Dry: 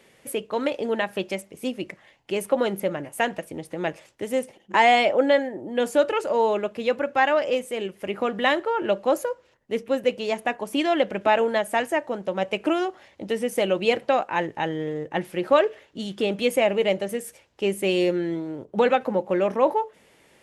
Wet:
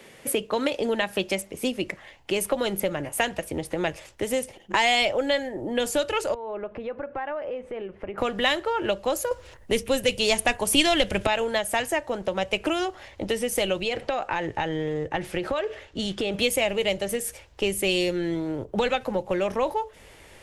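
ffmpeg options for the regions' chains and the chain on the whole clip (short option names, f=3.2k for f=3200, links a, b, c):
-filter_complex "[0:a]asettb=1/sr,asplit=3[a][b][c];[a]atrim=end=6.344[d];[b]atrim=start=6.34:end=8.18,asetpts=PTS-STARTPTS,afade=t=in:d=0.004:c=qsin,afade=t=out:st=1.836:d=0.004:c=qsin,lowpass=1.6k,acompressor=threshold=-38dB:ratio=4:attack=3.2:release=140:knee=1:detection=peak[e];[c]atrim=start=8.176[f];[d][e]acrossfade=d=0.004:c1=hsin:c2=qsin[g];[g][f]acrossfade=d=0.004:c1=qsin:c2=hsin,asettb=1/sr,asplit=3[h][i][j];[h]atrim=end=9.314[k];[i]atrim=start=9.31:end=11.27,asetpts=PTS-STARTPTS,afade=t=in:d=0.004:c=qsin,afade=t=out:st=1.956:d=0.004:c=qsin,equalizer=f=9.4k:t=o:w=0.36:g=7,acontrast=90[l];[j]atrim=start=11.266[m];[k][l]acrossfade=d=0.004:c1=hsin:c2=qsin[n];[n][m]acrossfade=d=0.004:c1=qsin:c2=hsin,asettb=1/sr,asplit=3[o][p][q];[o]atrim=end=13.824[r];[p]atrim=start=13.82:end=16.34,asetpts=PTS-STARTPTS,afade=t=in:d=0.004:c=qsin,afade=t=out:st=2.516:d=0.004:c=qsin,bandreject=f=1k:w=18,acompressor=threshold=-26dB:ratio=4:attack=3.2:release=140:knee=1:detection=peak,lowpass=9.4k[s];[q]atrim=start=16.336[t];[r][s]acrossfade=d=0.004:c1=hsin:c2=qsin[u];[u][t]acrossfade=d=0.004:c1=qsin:c2=hsin,acrossover=split=150|3000[v][w][x];[w]acompressor=threshold=-31dB:ratio=4[y];[v][y][x]amix=inputs=3:normalize=0,asubboost=boost=8.5:cutoff=64,volume=7.5dB"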